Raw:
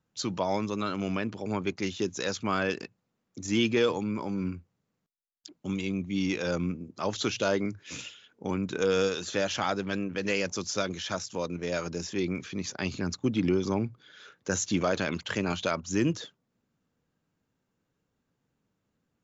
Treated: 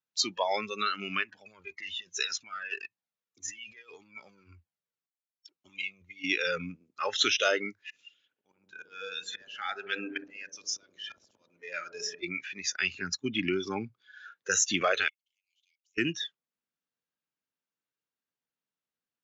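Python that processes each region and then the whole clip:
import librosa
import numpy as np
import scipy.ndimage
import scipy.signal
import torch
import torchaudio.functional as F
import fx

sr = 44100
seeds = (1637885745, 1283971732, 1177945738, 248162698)

y = fx.chain(x, sr, fx.over_compress(threshold_db=-33.0, ratio=-1.0),
    fx.comb_cascade(direction='falling', hz=1.8), at=(1.23, 6.24))
y = fx.chain(y, sr, fx.auto_swell(attack_ms=729.0),
    fx.echo_wet_lowpass(ms=63, feedback_pct=77, hz=570.0, wet_db=-3.0), at=(7.81, 12.23))
y = fx.chain(y, sr, fx.gate_flip(shuts_db=-31.0, range_db=-36),
    fx.cheby_ripple_highpass(hz=2100.0, ripple_db=6),
    fx.band_squash(depth_pct=100), at=(15.08, 15.98))
y = scipy.signal.sosfilt(scipy.signal.butter(2, 4100.0, 'lowpass', fs=sr, output='sos'), y)
y = fx.noise_reduce_blind(y, sr, reduce_db=18)
y = fx.tilt_eq(y, sr, slope=4.5)
y = y * 10.0 ** (3.0 / 20.0)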